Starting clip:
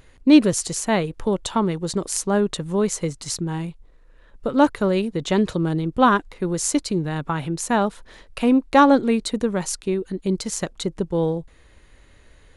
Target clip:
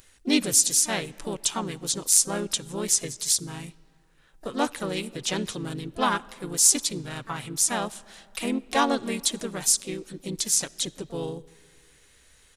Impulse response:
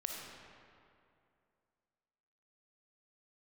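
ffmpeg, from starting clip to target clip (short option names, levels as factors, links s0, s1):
-filter_complex "[0:a]crystalizer=i=8:c=0,asplit=3[s0][s1][s2];[s1]asetrate=37084,aresample=44100,atempo=1.18921,volume=0.631[s3];[s2]asetrate=58866,aresample=44100,atempo=0.749154,volume=0.224[s4];[s0][s3][s4]amix=inputs=3:normalize=0,asplit=2[s5][s6];[1:a]atrim=start_sample=2205[s7];[s6][s7]afir=irnorm=-1:irlink=0,volume=0.112[s8];[s5][s8]amix=inputs=2:normalize=0,volume=0.2"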